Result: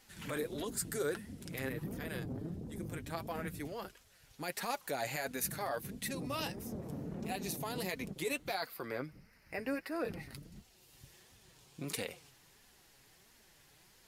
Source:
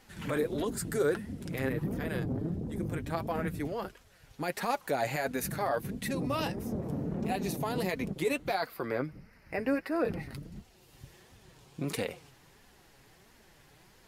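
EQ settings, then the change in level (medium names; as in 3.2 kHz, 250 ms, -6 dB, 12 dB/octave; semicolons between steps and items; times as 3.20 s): treble shelf 2.4 kHz +9.5 dB; -8.0 dB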